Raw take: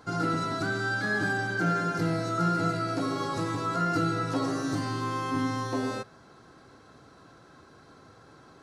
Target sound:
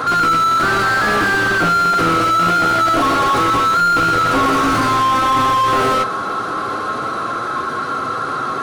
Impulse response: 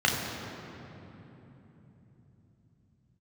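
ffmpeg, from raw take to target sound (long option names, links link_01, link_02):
-filter_complex "[0:a]equalizer=frequency=3700:width_type=o:width=0.77:gain=3.5,asplit=2[link_01][link_02];[link_02]acrusher=samples=29:mix=1:aa=0.000001:lfo=1:lforange=17.4:lforate=0.27,volume=-7dB[link_03];[link_01][link_03]amix=inputs=2:normalize=0,superequalizer=10b=3.16:15b=1.58:16b=3.16,flanger=delay=7.9:depth=2:regen=-40:speed=0.24:shape=sinusoidal,asplit=2[link_04][link_05];[link_05]highpass=frequency=720:poles=1,volume=37dB,asoftclip=type=tanh:threshold=-13dB[link_06];[link_04][link_06]amix=inputs=2:normalize=0,lowpass=frequency=1500:poles=1,volume=-6dB,volume=6.5dB"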